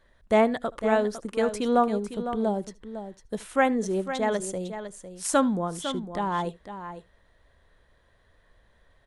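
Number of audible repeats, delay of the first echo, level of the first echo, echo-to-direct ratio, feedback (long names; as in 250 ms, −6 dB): 3, 76 ms, −23.0 dB, −10.0 dB, repeats not evenly spaced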